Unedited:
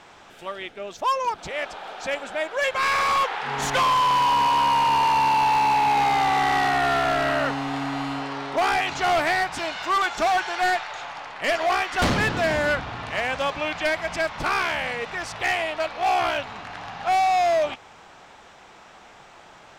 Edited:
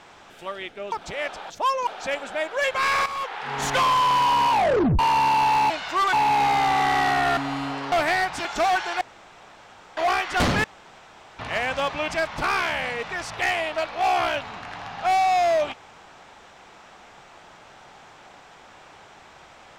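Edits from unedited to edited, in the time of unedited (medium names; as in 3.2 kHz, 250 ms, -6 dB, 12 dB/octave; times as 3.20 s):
0.92–1.29 s: move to 1.87 s
3.06–3.67 s: fade in, from -12.5 dB
4.51 s: tape stop 0.48 s
6.94–7.85 s: delete
8.40–9.11 s: delete
9.64–10.07 s: move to 5.70 s
10.63–11.59 s: room tone
12.26–13.01 s: room tone
13.70–14.10 s: delete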